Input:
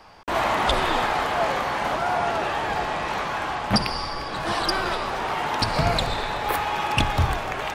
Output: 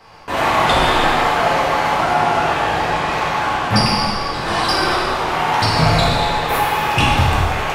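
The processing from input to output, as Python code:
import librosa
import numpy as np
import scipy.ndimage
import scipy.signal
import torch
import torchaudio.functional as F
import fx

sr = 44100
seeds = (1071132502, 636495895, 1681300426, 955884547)

y = fx.rev_gated(x, sr, seeds[0], gate_ms=440, shape='falling', drr_db=-7.0)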